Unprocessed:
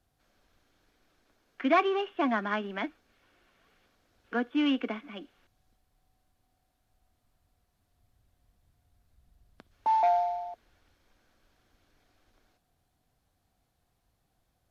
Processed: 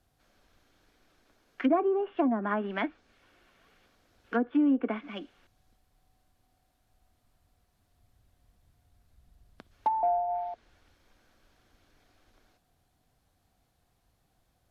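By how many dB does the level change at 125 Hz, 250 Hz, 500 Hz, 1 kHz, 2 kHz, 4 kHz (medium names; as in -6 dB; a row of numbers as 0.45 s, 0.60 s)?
no reading, +3.0 dB, +0.5 dB, -2.5 dB, -4.5 dB, -9.5 dB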